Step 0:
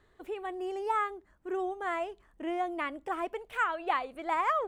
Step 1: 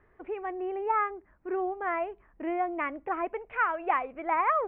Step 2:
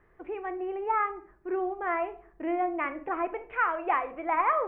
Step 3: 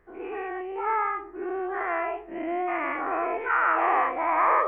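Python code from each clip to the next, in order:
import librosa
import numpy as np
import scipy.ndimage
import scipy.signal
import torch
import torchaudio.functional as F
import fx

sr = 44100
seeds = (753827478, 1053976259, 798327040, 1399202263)

y1 = scipy.signal.sosfilt(scipy.signal.cheby1(4, 1.0, 2400.0, 'lowpass', fs=sr, output='sos'), x)
y1 = y1 * 10.0 ** (3.0 / 20.0)
y2 = fx.room_shoebox(y1, sr, seeds[0], volume_m3=580.0, walls='furnished', distance_m=0.78)
y3 = fx.spec_dilate(y2, sr, span_ms=240)
y3 = y3 * 10.0 ** (-4.5 / 20.0)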